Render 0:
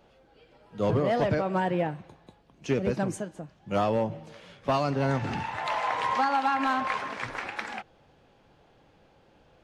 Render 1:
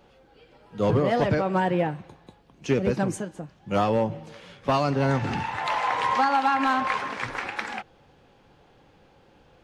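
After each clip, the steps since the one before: notch 640 Hz, Q 12; gain +3.5 dB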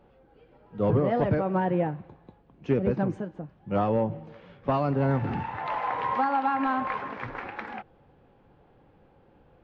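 tape spacing loss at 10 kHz 39 dB

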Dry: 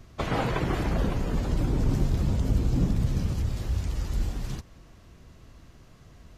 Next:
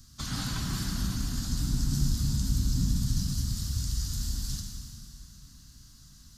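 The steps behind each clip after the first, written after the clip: EQ curve 250 Hz 0 dB, 470 Hz -24 dB, 1500 Hz 0 dB, 2300 Hz -9 dB, 4600 Hz +15 dB; plate-style reverb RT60 2.7 s, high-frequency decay 0.9×, DRR 1 dB; gain -6 dB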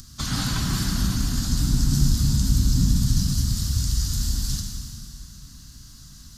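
upward compressor, threshold -48 dBFS; gain +7.5 dB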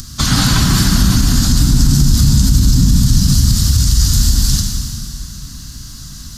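maximiser +14.5 dB; gain -1 dB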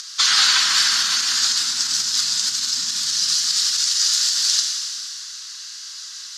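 Butterworth band-pass 3200 Hz, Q 0.64; gain +3.5 dB

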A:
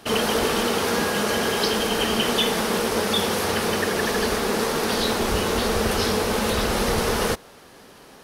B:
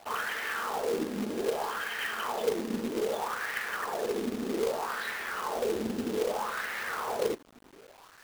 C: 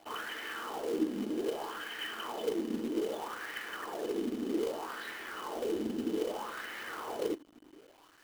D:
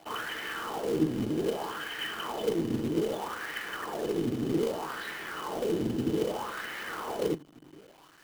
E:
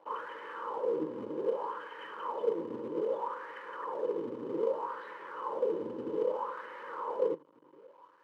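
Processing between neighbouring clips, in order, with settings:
wah 0.63 Hz 250–1900 Hz, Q 4.1; companded quantiser 4-bit
small resonant body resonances 310/3000 Hz, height 13 dB, ringing for 45 ms; gain -7.5 dB
octaver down 1 oct, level -5 dB; gain +4 dB
double band-pass 710 Hz, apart 0.87 oct; gain +6 dB

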